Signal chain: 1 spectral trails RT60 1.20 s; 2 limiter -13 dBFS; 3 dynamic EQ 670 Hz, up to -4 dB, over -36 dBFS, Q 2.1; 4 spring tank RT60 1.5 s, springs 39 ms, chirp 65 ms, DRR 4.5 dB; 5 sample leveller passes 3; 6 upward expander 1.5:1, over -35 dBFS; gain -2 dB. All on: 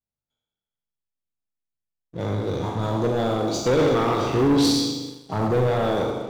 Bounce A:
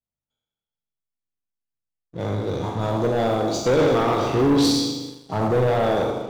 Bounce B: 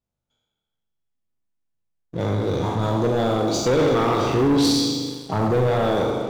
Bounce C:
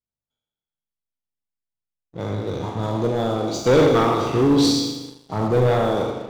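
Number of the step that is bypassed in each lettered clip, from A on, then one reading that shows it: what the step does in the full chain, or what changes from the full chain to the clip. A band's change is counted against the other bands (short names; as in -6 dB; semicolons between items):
3, loudness change +1.0 LU; 6, momentary loudness spread change -2 LU; 2, crest factor change +2.5 dB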